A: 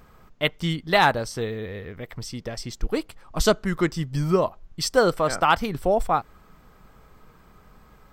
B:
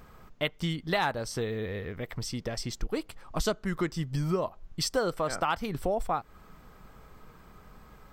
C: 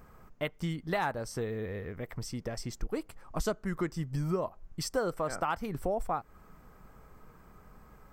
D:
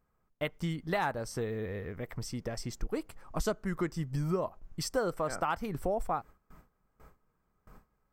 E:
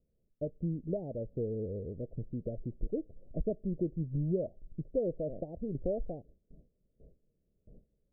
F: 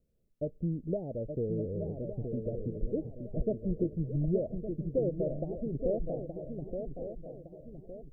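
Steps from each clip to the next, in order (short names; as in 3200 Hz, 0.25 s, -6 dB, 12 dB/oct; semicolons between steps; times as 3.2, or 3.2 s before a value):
compressor 2.5:1, threshold -29 dBFS, peak gain reduction 11 dB
bell 3600 Hz -9 dB 1 oct; gain -2.5 dB
gate with hold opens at -43 dBFS
steep low-pass 620 Hz 72 dB/oct
swung echo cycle 1.162 s, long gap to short 3:1, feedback 37%, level -6.5 dB; gain +1.5 dB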